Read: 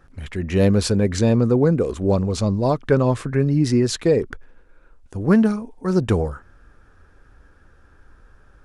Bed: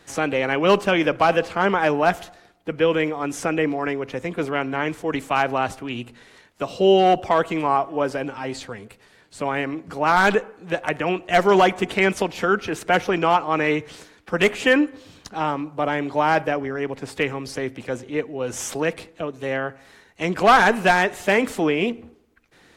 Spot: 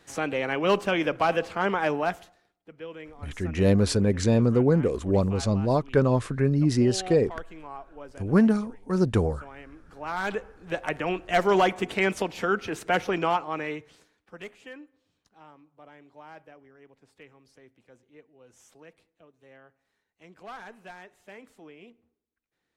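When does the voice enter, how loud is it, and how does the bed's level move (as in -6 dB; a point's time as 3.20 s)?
3.05 s, -4.0 dB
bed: 1.95 s -6 dB
2.64 s -21 dB
9.66 s -21 dB
10.77 s -5.5 dB
13.23 s -5.5 dB
14.78 s -28 dB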